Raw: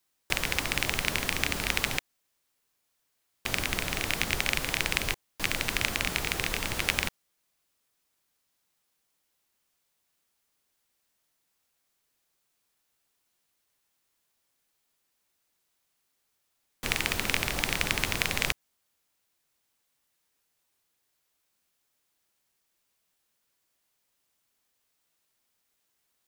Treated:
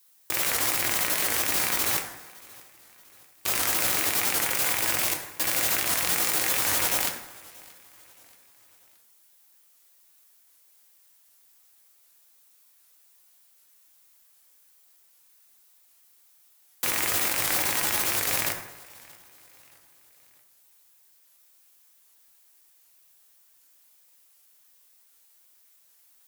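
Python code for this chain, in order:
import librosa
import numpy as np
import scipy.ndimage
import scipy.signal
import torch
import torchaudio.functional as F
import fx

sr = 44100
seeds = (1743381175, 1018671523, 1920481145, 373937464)

y = fx.highpass(x, sr, hz=470.0, slope=6)
y = fx.high_shelf(y, sr, hz=7100.0, db=12.0)
y = fx.over_compress(y, sr, threshold_db=-31.0, ratio=-1.0)
y = (np.mod(10.0 ** (15.0 / 20.0) * y + 1.0, 2.0) - 1.0) / 10.0 ** (15.0 / 20.0)
y = fx.echo_feedback(y, sr, ms=630, feedback_pct=47, wet_db=-23.5)
y = fx.rev_fdn(y, sr, rt60_s=1.0, lf_ratio=0.9, hf_ratio=0.6, size_ms=56.0, drr_db=1.5)
y = fx.record_warp(y, sr, rpm=78.0, depth_cents=160.0)
y = y * 10.0 ** (3.5 / 20.0)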